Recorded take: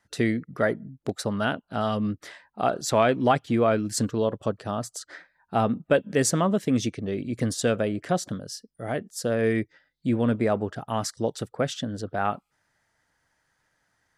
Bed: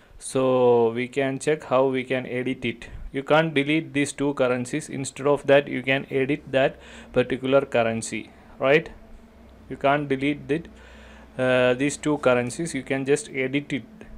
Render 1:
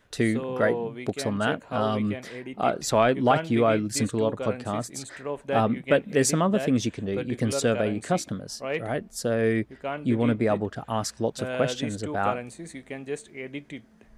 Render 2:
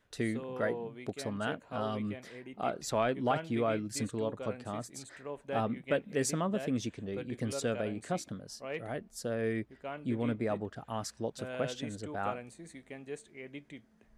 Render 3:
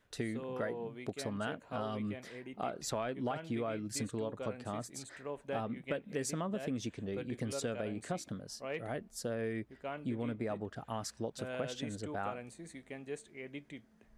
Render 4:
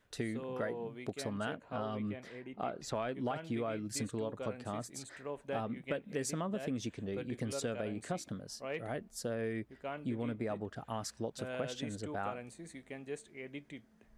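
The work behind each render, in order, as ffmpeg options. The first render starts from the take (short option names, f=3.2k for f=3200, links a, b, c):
-filter_complex "[1:a]volume=-11.5dB[a];[0:a][a]amix=inputs=2:normalize=0"
-af "volume=-9.5dB"
-af "acompressor=threshold=-33dB:ratio=6"
-filter_complex "[0:a]asettb=1/sr,asplit=3[a][b][c];[a]atrim=end=1.564[d];[b]atrim=start=1.56:end=2.95,asetpts=PTS-STARTPTS,afade=t=in:d=0.004:c=qsin,afade=t=out:st=1.386:d=0.004:c=qsin,lowpass=f=3.5k:p=1[e];[c]atrim=start=2.946[f];[d][e]acrossfade=d=0.004:c1=hsin:c2=qsin[g];[g][f]acrossfade=d=0.004:c1=qsin:c2=hsin"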